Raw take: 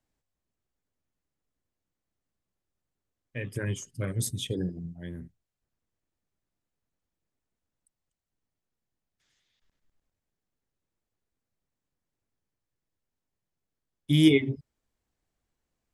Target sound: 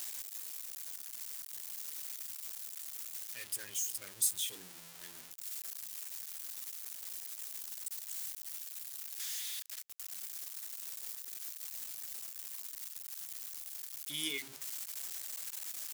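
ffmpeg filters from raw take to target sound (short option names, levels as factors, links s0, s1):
-af "aeval=exprs='val(0)+0.5*0.0299*sgn(val(0))':c=same,aderivative,volume=0.891"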